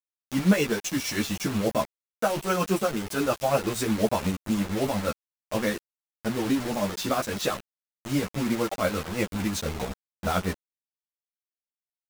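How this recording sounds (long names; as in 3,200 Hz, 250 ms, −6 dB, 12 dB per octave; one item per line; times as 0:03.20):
tremolo triangle 8.5 Hz, depth 65%
a quantiser's noise floor 6 bits, dither none
a shimmering, thickened sound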